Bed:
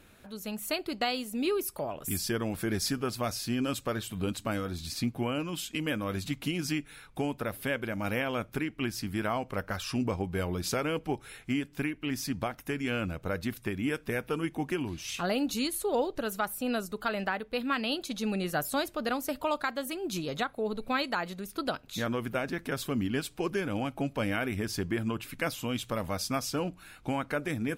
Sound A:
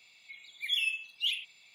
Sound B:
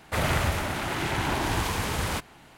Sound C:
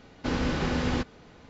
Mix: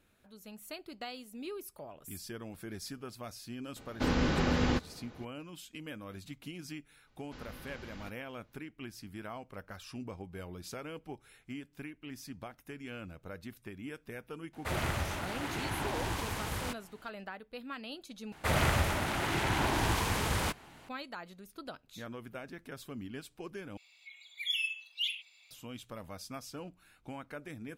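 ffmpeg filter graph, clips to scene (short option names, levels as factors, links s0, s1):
-filter_complex "[3:a]asplit=2[s0][s1];[2:a]asplit=2[s2][s3];[0:a]volume=0.237[s4];[s1]equalizer=f=300:w=0.42:g=-7[s5];[1:a]highpass=680[s6];[s4]asplit=3[s7][s8][s9];[s7]atrim=end=18.324[s10];[s3]atrim=end=2.57,asetpts=PTS-STARTPTS,volume=0.708[s11];[s8]atrim=start=20.886:end=23.774[s12];[s6]atrim=end=1.74,asetpts=PTS-STARTPTS,volume=0.708[s13];[s9]atrim=start=25.506[s14];[s0]atrim=end=1.49,asetpts=PTS-STARTPTS,volume=0.841,afade=t=in:d=0.004:c=hsin,afade=t=out:st=1.486:d=0.004:c=hsin,adelay=3760[s15];[s5]atrim=end=1.49,asetpts=PTS-STARTPTS,volume=0.133,afade=t=in:d=0.004:c=hsin,afade=t=out:st=1.486:d=0.004:c=hsin,adelay=7070[s16];[s2]atrim=end=2.57,asetpts=PTS-STARTPTS,volume=0.376,afade=t=in:d=0.004:c=hsin,afade=t=out:st=2.566:d=0.004:c=hsin,adelay=14530[s17];[s10][s11]acrossfade=d=0.004:c1=hsin:c2=hsin[s18];[s18][s12]acrossfade=d=0.004:c1=hsin:c2=hsin[s19];[s19][s13]acrossfade=d=0.004:c1=hsin:c2=hsin[s20];[s20][s14]acrossfade=d=0.004:c1=hsin:c2=hsin[s21];[s21][s15][s16][s17]amix=inputs=4:normalize=0"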